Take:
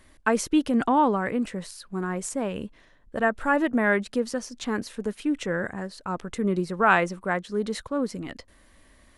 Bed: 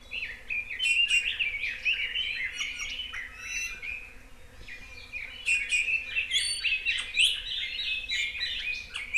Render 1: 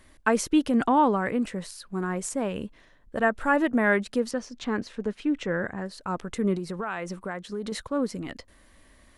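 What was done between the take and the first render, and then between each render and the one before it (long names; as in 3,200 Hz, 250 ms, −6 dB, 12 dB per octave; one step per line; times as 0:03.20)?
0:04.31–0:05.86: high-frequency loss of the air 92 metres
0:06.55–0:07.72: downward compressor, threshold −28 dBFS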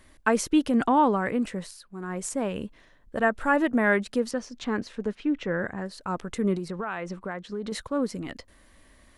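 0:01.59–0:02.27: duck −8.5 dB, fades 0.29 s
0:05.15–0:05.59: high-frequency loss of the air 92 metres
0:06.68–0:07.71: high-frequency loss of the air 78 metres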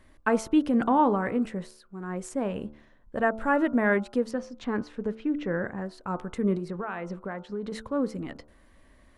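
high-shelf EQ 2,600 Hz −10 dB
hum removal 73.9 Hz, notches 20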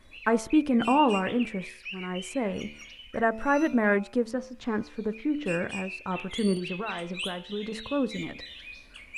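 mix in bed −11.5 dB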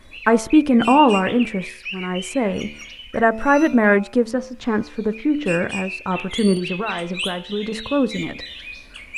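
level +8.5 dB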